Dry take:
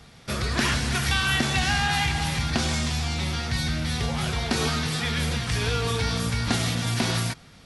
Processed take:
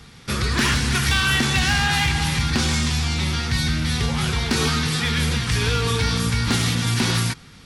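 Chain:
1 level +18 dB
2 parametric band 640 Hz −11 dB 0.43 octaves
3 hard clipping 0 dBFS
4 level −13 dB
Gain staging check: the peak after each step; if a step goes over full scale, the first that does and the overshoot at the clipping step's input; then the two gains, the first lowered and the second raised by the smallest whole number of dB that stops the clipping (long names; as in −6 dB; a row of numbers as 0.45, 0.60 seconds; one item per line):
+9.0, +8.5, 0.0, −13.0 dBFS
step 1, 8.5 dB
step 1 +9 dB, step 4 −4 dB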